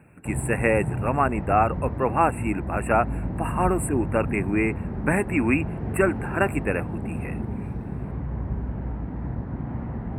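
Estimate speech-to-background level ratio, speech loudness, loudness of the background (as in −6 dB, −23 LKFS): 6.0 dB, −25.0 LKFS, −31.0 LKFS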